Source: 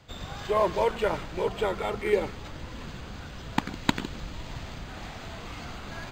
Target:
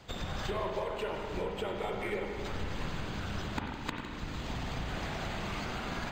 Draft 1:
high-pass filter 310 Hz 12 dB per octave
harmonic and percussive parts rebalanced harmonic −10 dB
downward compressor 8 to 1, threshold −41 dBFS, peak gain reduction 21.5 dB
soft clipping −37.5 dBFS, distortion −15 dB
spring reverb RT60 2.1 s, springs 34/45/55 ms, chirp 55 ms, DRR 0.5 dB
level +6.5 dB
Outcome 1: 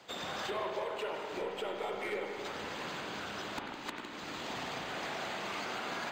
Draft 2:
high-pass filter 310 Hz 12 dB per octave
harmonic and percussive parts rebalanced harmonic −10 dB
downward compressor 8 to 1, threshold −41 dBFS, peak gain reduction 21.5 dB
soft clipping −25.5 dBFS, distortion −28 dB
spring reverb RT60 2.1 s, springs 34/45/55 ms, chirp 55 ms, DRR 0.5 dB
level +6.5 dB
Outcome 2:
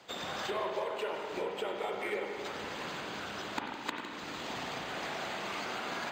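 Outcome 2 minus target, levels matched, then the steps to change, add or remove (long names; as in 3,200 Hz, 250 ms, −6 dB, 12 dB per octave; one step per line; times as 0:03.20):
250 Hz band −4.0 dB
remove: high-pass filter 310 Hz 12 dB per octave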